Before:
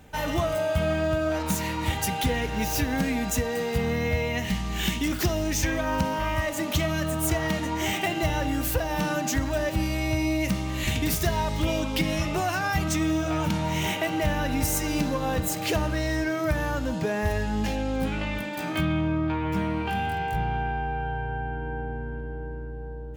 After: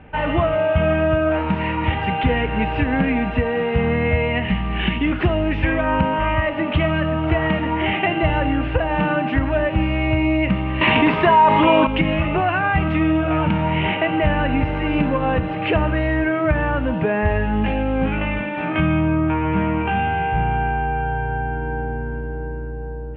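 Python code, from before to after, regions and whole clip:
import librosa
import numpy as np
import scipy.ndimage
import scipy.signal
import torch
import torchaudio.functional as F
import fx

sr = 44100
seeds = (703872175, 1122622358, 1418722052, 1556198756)

y = fx.chain(x, sr, fx.highpass(hz=220.0, slope=12),
    fx.peak_eq(hz=1000.0, db=13.5, octaves=0.27),
    fx.env_flatten(amount_pct=70), at=(10.81, 11.87))
y = scipy.signal.sosfilt(scipy.signal.ellip(4, 1.0, 60, 2800.0, 'lowpass', fs=sr, output='sos'), y)
y = fx.end_taper(y, sr, db_per_s=220.0)
y = F.gain(torch.from_numpy(y), 8.0).numpy()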